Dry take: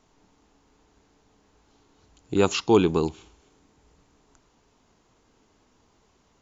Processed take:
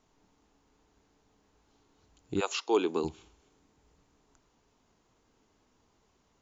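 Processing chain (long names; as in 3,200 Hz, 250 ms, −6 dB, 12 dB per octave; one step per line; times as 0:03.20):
0:02.39–0:03.03: high-pass filter 610 Hz → 210 Hz 24 dB per octave
level −6.5 dB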